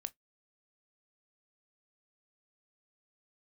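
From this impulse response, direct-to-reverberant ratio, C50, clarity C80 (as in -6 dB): 12.5 dB, 30.5 dB, 46.5 dB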